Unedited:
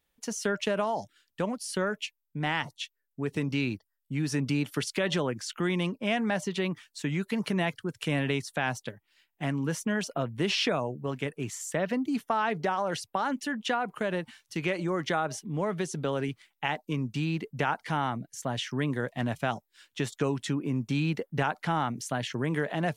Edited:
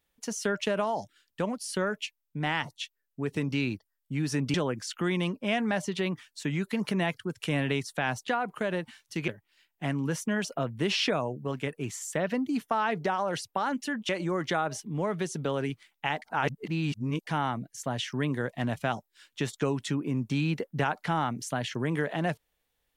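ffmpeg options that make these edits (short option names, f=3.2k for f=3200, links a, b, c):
-filter_complex "[0:a]asplit=7[a][b][c][d][e][f][g];[a]atrim=end=4.542[h];[b]atrim=start=5.128:end=8.872[i];[c]atrim=start=13.678:end=14.682[j];[d]atrim=start=8.868:end=13.682[k];[e]atrim=start=14.678:end=16.812[l];[f]atrim=start=16.808:end=17.862,asetpts=PTS-STARTPTS,areverse[m];[g]atrim=start=17.858[n];[h][i]acrossfade=d=0.004:c1=hsin:c2=hsin[o];[o][j]acrossfade=d=0.004:c1=hsin:c2=hsin[p];[p][k]acrossfade=d=0.004:c1=hsin:c2=hsin[q];[q][l]acrossfade=d=0.004:c1=hsin:c2=hsin[r];[r][m]acrossfade=d=0.004:c1=hsin:c2=hsin[s];[s][n]acrossfade=d=0.004:c1=hsin:c2=hsin"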